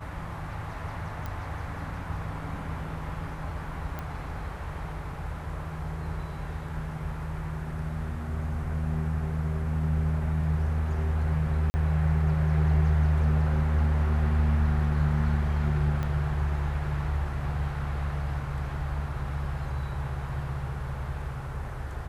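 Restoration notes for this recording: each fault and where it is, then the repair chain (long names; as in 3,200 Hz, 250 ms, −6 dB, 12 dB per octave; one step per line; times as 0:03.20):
0:01.26: click −22 dBFS
0:03.99: click −22 dBFS
0:11.70–0:11.74: drop-out 40 ms
0:16.03: click −20 dBFS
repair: click removal
repair the gap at 0:11.70, 40 ms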